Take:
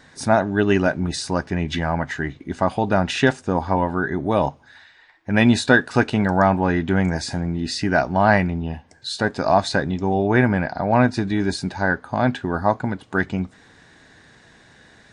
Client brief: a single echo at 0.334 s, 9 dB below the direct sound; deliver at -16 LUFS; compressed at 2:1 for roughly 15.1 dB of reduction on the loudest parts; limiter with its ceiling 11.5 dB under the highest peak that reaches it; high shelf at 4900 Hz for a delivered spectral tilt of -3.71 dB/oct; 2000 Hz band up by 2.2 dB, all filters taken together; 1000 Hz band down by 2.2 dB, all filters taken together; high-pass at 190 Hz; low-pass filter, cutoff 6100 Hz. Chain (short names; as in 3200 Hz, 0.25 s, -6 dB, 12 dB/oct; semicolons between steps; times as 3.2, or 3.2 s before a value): HPF 190 Hz; LPF 6100 Hz; bell 1000 Hz -4 dB; bell 2000 Hz +6 dB; high shelf 4900 Hz -8.5 dB; compressor 2:1, threshold -39 dBFS; limiter -26.5 dBFS; echo 0.334 s -9 dB; gain +22.5 dB